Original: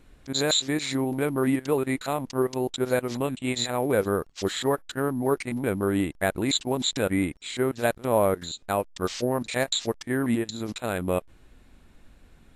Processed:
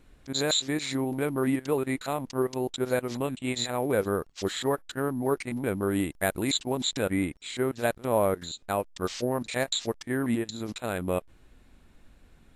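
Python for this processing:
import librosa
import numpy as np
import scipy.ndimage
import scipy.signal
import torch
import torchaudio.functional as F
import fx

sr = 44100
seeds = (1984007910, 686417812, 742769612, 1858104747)

y = fx.high_shelf(x, sr, hz=fx.line((5.9, 8500.0), (6.5, 4600.0)), db=8.5, at=(5.9, 6.5), fade=0.02)
y = F.gain(torch.from_numpy(y), -2.5).numpy()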